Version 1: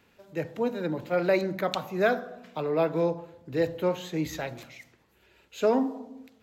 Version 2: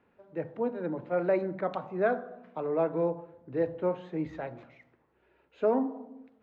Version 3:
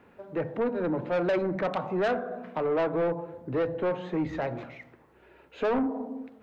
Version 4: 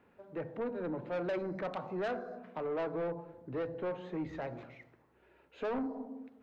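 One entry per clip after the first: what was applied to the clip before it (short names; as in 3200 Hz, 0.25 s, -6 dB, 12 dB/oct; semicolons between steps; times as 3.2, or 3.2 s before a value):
LPF 1400 Hz 12 dB/oct; low shelf 120 Hz -6.5 dB; notches 50/100/150/200 Hz; gain -2 dB
in parallel at +3 dB: compressor, threshold -37 dBFS, peak gain reduction 15.5 dB; on the sum: soft clip -25.5 dBFS, distortion -9 dB; gain +3.5 dB
on a send at -16.5 dB: brick-wall FIR band-stop 630–3900 Hz + reverb, pre-delay 3 ms; on the sum: gain -9 dB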